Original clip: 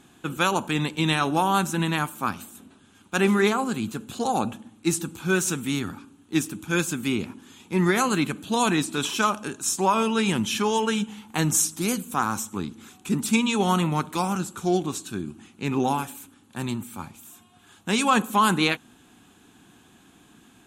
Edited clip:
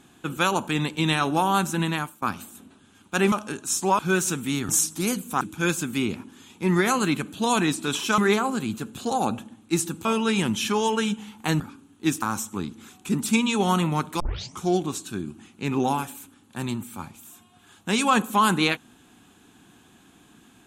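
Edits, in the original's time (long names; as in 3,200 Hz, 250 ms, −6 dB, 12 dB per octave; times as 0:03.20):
0:01.77–0:02.22: fade out equal-power, to −20.5 dB
0:03.32–0:05.19: swap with 0:09.28–0:09.95
0:05.89–0:06.51: swap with 0:11.50–0:12.22
0:14.20: tape start 0.41 s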